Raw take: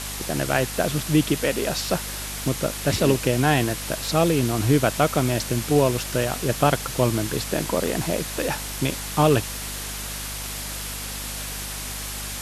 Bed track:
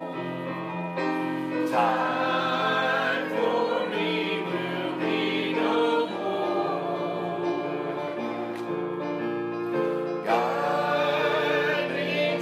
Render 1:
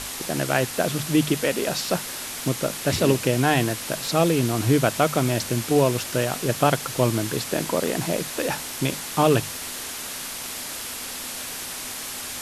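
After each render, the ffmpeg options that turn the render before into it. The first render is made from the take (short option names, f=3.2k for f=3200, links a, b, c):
-af "bandreject=f=50:t=h:w=6,bandreject=f=100:t=h:w=6,bandreject=f=150:t=h:w=6,bandreject=f=200:t=h:w=6"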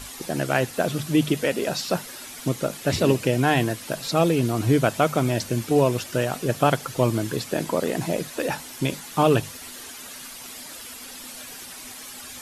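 -af "afftdn=nr=10:nf=-34"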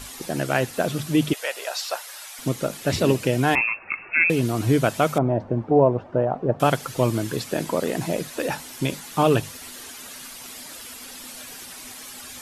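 -filter_complex "[0:a]asettb=1/sr,asplit=3[a][b][c];[a]atrim=end=1.334[d];[b]atrim=start=1.33:end=2.39,asetpts=PTS-STARTPTS,afade=t=in:d=0.004:c=qsin,afade=t=out:st=1.056:d=0.004:c=qsin,highpass=f=630:w=0.5412,highpass=f=630:w=1.3066[e];[c]atrim=start=2.386[f];[d][e]acrossfade=d=0.004:c1=hsin:c2=qsin[g];[g][f]acrossfade=d=0.004:c1=qsin:c2=hsin,asettb=1/sr,asplit=3[h][i][j];[h]atrim=end=3.554[k];[i]atrim=start=3.55:end=4.3,asetpts=PTS-STARTPTS,afade=t=in:d=0.004:c=qsin,afade=t=out:st=0.746:d=0.004:c=qsin,lowpass=f=2.4k:t=q:w=0.5098,lowpass=f=2.4k:t=q:w=0.6013,lowpass=f=2.4k:t=q:w=0.9,lowpass=f=2.4k:t=q:w=2.563,afreqshift=-2800[l];[j]atrim=start=4.296[m];[k][l]acrossfade=d=0.004:c1=hsin:c2=qsin[n];[n][m]acrossfade=d=0.004:c1=qsin:c2=hsin,asettb=1/sr,asplit=3[o][p][q];[o]atrim=end=5.184[r];[p]atrim=start=5.18:end=6.6,asetpts=PTS-STARTPTS,afade=t=in:d=0.004:c=qsin,afade=t=out:st=1.416:d=0.004:c=qsin,lowpass=f=810:t=q:w=1.8[s];[q]atrim=start=6.596[t];[r][s]acrossfade=d=0.004:c1=hsin:c2=qsin[u];[u][t]acrossfade=d=0.004:c1=qsin:c2=hsin"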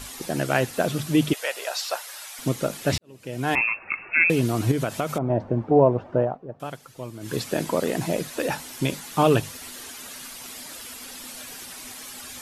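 -filter_complex "[0:a]asettb=1/sr,asplit=3[a][b][c];[a]atrim=end=4.714[d];[b]atrim=start=4.71:end=5.3,asetpts=PTS-STARTPTS,afade=t=in:d=0.004:c=qsin,afade=t=out:st=0.586:d=0.004:c=qsin,acompressor=threshold=-20dB:ratio=6:attack=3.2:release=140:knee=1:detection=peak[e];[c]atrim=start=5.296[f];[d][e]acrossfade=d=0.004:c1=hsin:c2=qsin[g];[g][f]acrossfade=d=0.004:c1=qsin:c2=hsin,asplit=4[h][i][j][k];[h]atrim=end=2.98,asetpts=PTS-STARTPTS,afade=t=out:st=2.976:d=0.004:c=hsin[l];[i]atrim=start=2.98:end=6.38,asetpts=PTS-STARTPTS,afade=t=in:d=0.65:c=qua,afade=t=out:st=3.25:d=0.15:silence=0.177828[m];[j]atrim=start=6.38:end=7.2,asetpts=PTS-STARTPTS,volume=-15dB[n];[k]atrim=start=7.2,asetpts=PTS-STARTPTS,afade=t=in:d=0.15:silence=0.177828[o];[l][m][n][o]concat=n=4:v=0:a=1"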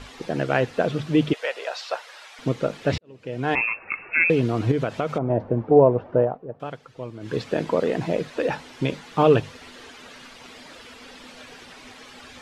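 -af "lowpass=3.5k,equalizer=f=470:w=5.1:g=6"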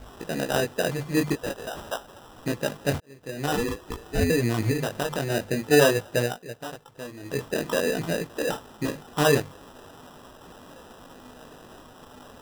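-af "flanger=delay=17:depth=4.8:speed=0.47,acrusher=samples=20:mix=1:aa=0.000001"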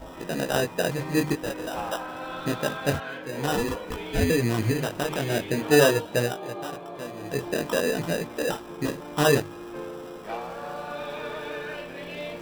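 -filter_complex "[1:a]volume=-10.5dB[a];[0:a][a]amix=inputs=2:normalize=0"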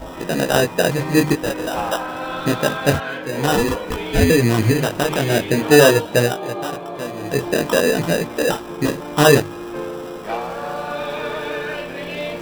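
-af "volume=8.5dB,alimiter=limit=-1dB:level=0:latency=1"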